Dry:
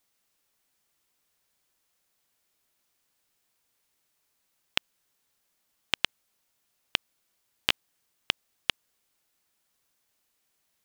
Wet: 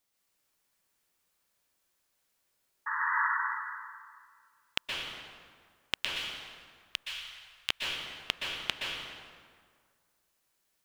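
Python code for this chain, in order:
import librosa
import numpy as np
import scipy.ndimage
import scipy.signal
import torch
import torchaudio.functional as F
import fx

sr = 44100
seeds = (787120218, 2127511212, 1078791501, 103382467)

y = fx.spec_paint(x, sr, seeds[0], shape='noise', start_s=2.86, length_s=0.44, low_hz=870.0, high_hz=2000.0, level_db=-28.0)
y = fx.tone_stack(y, sr, knobs='10-0-10', at=(5.95, 7.7))
y = fx.rev_plate(y, sr, seeds[1], rt60_s=1.9, hf_ratio=0.65, predelay_ms=110, drr_db=-2.5)
y = y * 10.0 ** (-5.0 / 20.0)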